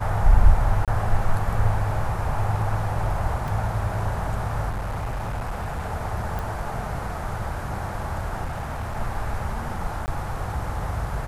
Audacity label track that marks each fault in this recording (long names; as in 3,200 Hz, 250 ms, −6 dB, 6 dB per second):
0.850000	0.880000	drop-out 27 ms
3.480000	3.480000	drop-out 3.1 ms
4.690000	5.910000	clipping −24.5 dBFS
6.390000	6.390000	click
8.440000	8.970000	clipping −25.5 dBFS
10.060000	10.080000	drop-out 19 ms